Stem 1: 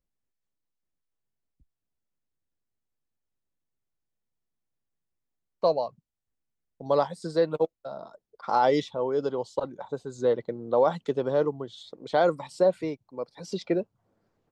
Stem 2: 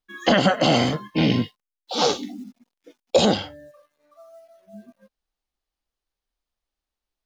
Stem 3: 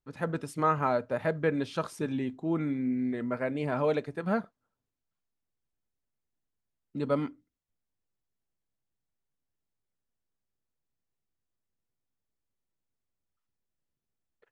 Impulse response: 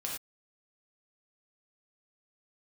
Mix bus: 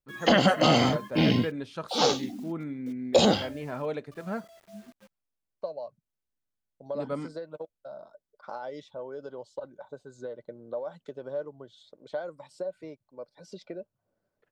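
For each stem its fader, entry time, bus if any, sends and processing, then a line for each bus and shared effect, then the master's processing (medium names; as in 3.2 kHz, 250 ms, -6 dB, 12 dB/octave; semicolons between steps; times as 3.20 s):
-10.5 dB, 0.00 s, no send, compression 10:1, threshold -26 dBFS, peak gain reduction 10 dB; small resonant body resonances 590/1500 Hz, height 11 dB
-3.0 dB, 0.00 s, no send, bit crusher 9-bit
-5.0 dB, 0.00 s, no send, none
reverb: none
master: none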